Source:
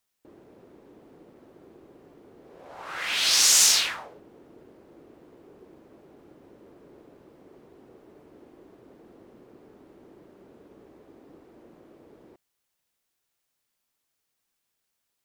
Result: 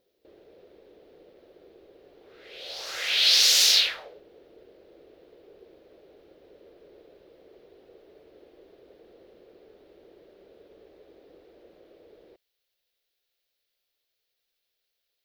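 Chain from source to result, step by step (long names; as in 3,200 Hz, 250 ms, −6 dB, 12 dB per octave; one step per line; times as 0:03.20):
octave-band graphic EQ 125/250/500/1,000/4,000/8,000 Hz −10/−11/+8/−11/+9/−12 dB
backwards echo 568 ms −20 dB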